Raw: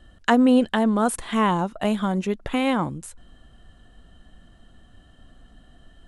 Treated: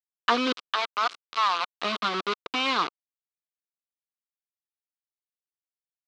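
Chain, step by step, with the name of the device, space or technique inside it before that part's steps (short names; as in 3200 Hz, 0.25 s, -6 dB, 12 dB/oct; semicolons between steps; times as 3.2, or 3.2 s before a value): 0.52–1.7 Chebyshev high-pass 660 Hz, order 4; hand-held game console (bit-crush 4-bit; speaker cabinet 500–4500 Hz, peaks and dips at 580 Hz -9 dB, 820 Hz -8 dB, 1200 Hz +8 dB, 1800 Hz -7 dB, 3900 Hz +4 dB)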